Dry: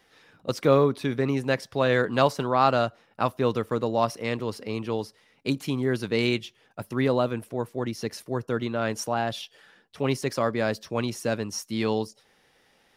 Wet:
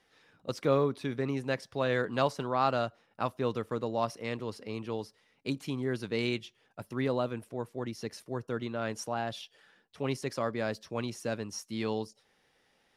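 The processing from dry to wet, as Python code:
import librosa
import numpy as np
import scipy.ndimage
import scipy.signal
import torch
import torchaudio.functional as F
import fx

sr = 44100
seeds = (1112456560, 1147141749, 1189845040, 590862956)

y = scipy.signal.sosfilt(scipy.signal.butter(2, 12000.0, 'lowpass', fs=sr, output='sos'), x)
y = y * 10.0 ** (-7.0 / 20.0)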